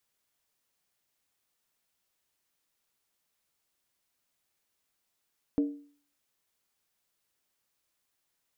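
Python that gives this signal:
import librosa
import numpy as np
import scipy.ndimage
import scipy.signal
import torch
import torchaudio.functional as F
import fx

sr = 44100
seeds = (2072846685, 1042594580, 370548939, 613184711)

y = fx.strike_skin(sr, length_s=0.63, level_db=-20.5, hz=288.0, decay_s=0.47, tilt_db=11.0, modes=5)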